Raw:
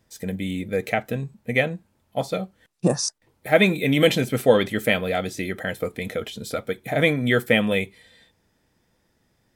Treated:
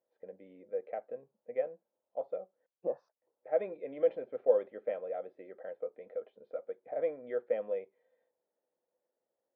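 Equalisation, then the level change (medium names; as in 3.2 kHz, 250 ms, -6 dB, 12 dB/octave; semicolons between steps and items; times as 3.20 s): ladder band-pass 570 Hz, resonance 65%; distance through air 270 m; peaking EQ 450 Hz -3.5 dB 0.23 oct; -5.0 dB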